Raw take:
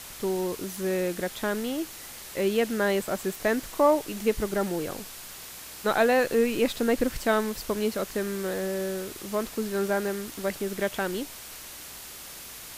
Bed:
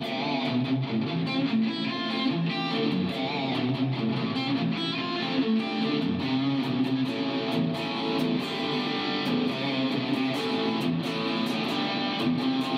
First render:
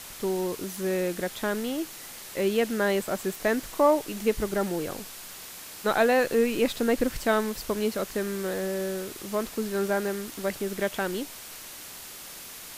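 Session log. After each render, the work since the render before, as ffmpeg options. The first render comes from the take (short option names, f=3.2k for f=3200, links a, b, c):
-af "bandreject=f=60:t=h:w=4,bandreject=f=120:t=h:w=4"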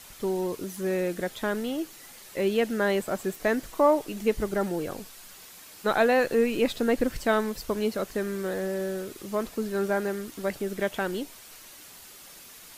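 -af "afftdn=nr=7:nf=-43"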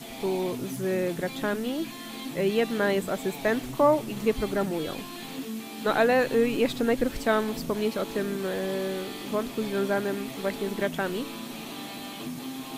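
-filter_complex "[1:a]volume=-10.5dB[a];[0:a][a]amix=inputs=2:normalize=0"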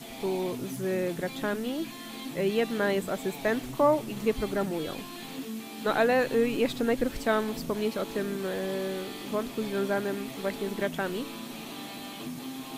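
-af "volume=-2dB"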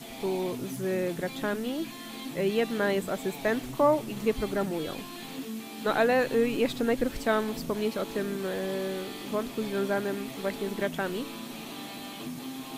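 -af anull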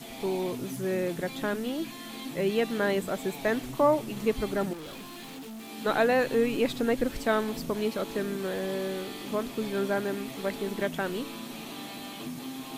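-filter_complex "[0:a]asettb=1/sr,asplit=3[a][b][c];[a]atrim=end=4.734[d];[b]atrim=start=4.73:end=5.69,asetpts=PTS-STARTPTS,afade=t=in:d=0.004:c=qsin,afade=t=out:st=0.956:d=0.004:c=qsin,asoftclip=type=hard:threshold=-39.5dB[e];[c]atrim=start=5.686[f];[d][e]acrossfade=d=0.004:c1=hsin:c2=qsin[g];[g][f]acrossfade=d=0.004:c1=qsin:c2=hsin"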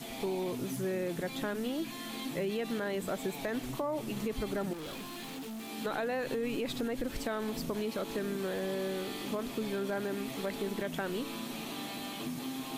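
-af "alimiter=limit=-22dB:level=0:latency=1:release=27,acompressor=threshold=-32dB:ratio=2.5"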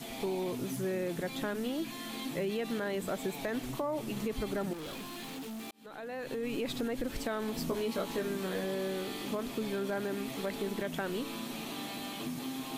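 -filter_complex "[0:a]asettb=1/sr,asplit=3[a][b][c];[a]atrim=end=7.564[d];[b]atrim=start=7.56:end=8.64,asetpts=PTS-STARTPTS,afade=t=in:d=0.004:c=qsin,afade=t=out:st=1.076:d=0.004:c=qsin,asplit=2[e][f];[f]adelay=17,volume=-4dB[g];[e][g]amix=inputs=2:normalize=0,atrim=end_sample=47628[h];[c]atrim=start=8.636[i];[d][h]acrossfade=d=0.004:c1=hsin:c2=qsin[j];[j][i]acrossfade=d=0.004:c1=qsin:c2=hsin,asplit=2[k][l];[k]atrim=end=5.71,asetpts=PTS-STARTPTS,afade=t=out:st=5.706:d=0.004:c=hsin[m];[l]atrim=start=5.71,asetpts=PTS-STARTPTS,afade=t=in:d=0.9[n];[m][n]concat=n=2:v=0:a=1"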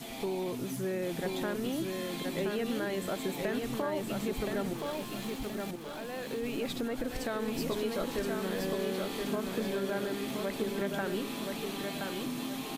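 -af "aecho=1:1:1023|2046|3069|4092:0.631|0.215|0.0729|0.0248"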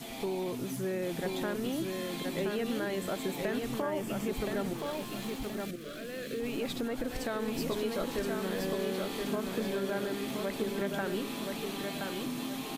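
-filter_complex "[0:a]asettb=1/sr,asplit=3[a][b][c];[a]atrim=end=3.804[d];[b]atrim=start=3.8:end=4.29,asetpts=PTS-STARTPTS,afade=t=in:d=0.004:c=qsin,afade=t=out:st=0.486:d=0.004:c=qsin,equalizer=f=4k:w=7.5:g=-13[e];[c]atrim=start=4.286[f];[d][e]acrossfade=d=0.004:c1=hsin:c2=qsin[g];[g][f]acrossfade=d=0.004:c1=qsin:c2=hsin,asettb=1/sr,asplit=3[h][i][j];[h]atrim=end=5.654[k];[i]atrim=start=5.65:end=6.4,asetpts=PTS-STARTPTS,afade=t=in:d=0.004:c=qsin,afade=t=out:st=0.746:d=0.004:c=qsin,asuperstop=centerf=880:order=4:qfactor=1.5[l];[j]atrim=start=6.396[m];[k][l]acrossfade=d=0.004:c1=hsin:c2=qsin[n];[n][m]acrossfade=d=0.004:c1=qsin:c2=hsin"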